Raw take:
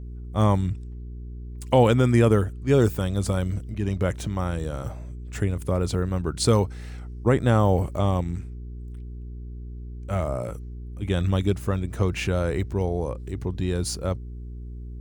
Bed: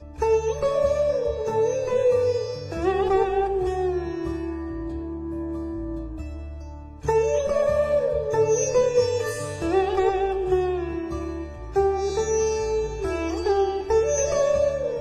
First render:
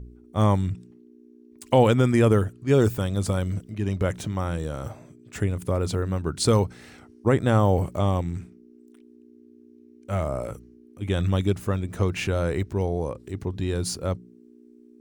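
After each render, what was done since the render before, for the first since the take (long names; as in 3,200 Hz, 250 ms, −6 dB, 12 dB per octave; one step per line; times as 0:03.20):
hum removal 60 Hz, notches 3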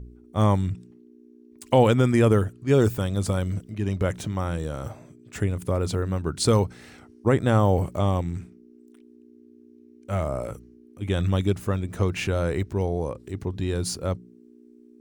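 no processing that can be heard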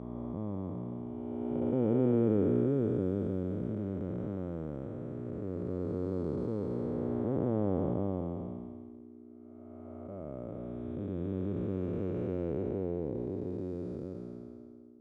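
spectrum smeared in time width 936 ms
resonant band-pass 310 Hz, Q 1.2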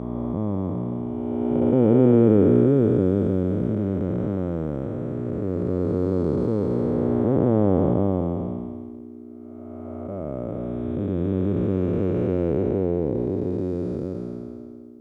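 level +11.5 dB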